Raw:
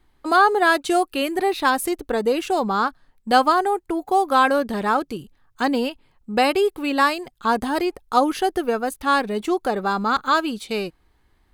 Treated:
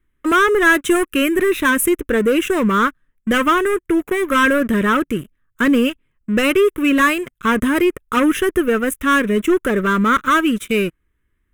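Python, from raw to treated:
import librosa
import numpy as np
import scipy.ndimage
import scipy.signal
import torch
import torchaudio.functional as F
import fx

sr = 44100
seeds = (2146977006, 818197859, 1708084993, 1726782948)

y = fx.leveller(x, sr, passes=3)
y = fx.fixed_phaser(y, sr, hz=1900.0, stages=4)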